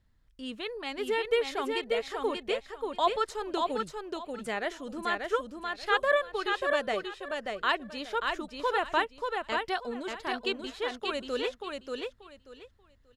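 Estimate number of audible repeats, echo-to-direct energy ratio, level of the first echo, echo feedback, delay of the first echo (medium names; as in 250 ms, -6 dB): 3, -4.0 dB, -4.0 dB, 21%, 585 ms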